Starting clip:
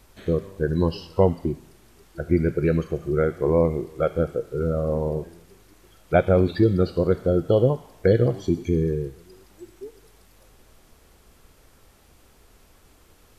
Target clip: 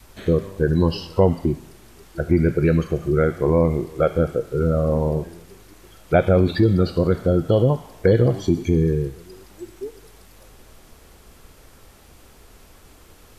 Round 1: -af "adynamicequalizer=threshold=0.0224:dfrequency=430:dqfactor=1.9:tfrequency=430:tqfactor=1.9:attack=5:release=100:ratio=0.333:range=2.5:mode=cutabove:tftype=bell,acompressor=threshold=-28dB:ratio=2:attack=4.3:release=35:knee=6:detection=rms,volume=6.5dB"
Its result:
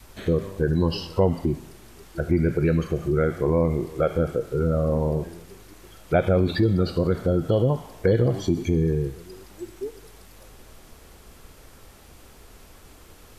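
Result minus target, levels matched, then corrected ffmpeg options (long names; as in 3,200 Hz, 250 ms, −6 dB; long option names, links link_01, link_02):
downward compressor: peak gain reduction +4 dB
-af "adynamicequalizer=threshold=0.0224:dfrequency=430:dqfactor=1.9:tfrequency=430:tqfactor=1.9:attack=5:release=100:ratio=0.333:range=2.5:mode=cutabove:tftype=bell,acompressor=threshold=-20dB:ratio=2:attack=4.3:release=35:knee=6:detection=rms,volume=6.5dB"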